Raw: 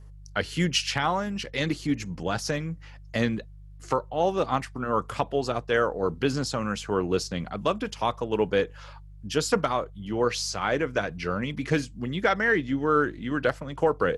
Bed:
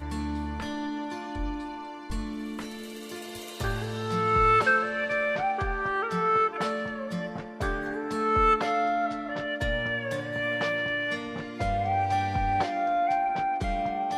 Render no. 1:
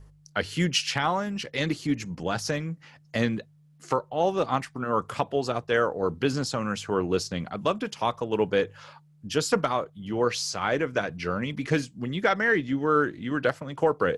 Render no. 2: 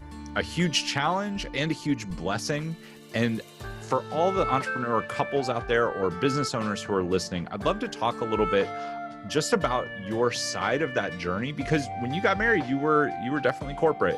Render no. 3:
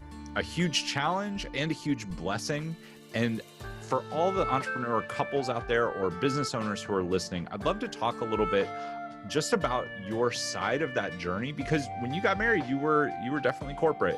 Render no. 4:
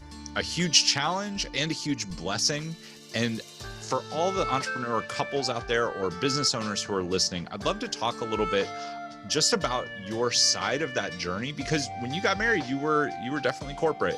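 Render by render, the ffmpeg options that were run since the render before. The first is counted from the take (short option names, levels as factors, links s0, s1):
-af "bandreject=f=50:t=h:w=4,bandreject=f=100:t=h:w=4"
-filter_complex "[1:a]volume=0.376[s0];[0:a][s0]amix=inputs=2:normalize=0"
-af "volume=0.708"
-af "equalizer=f=5400:t=o:w=1.2:g=14"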